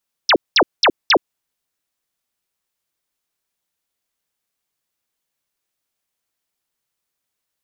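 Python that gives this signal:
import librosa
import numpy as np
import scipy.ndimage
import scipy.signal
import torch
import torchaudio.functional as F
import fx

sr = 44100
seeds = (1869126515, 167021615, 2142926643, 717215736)

y = fx.laser_zaps(sr, level_db=-9.0, start_hz=6100.0, end_hz=260.0, length_s=0.07, wave='sine', shots=4, gap_s=0.2)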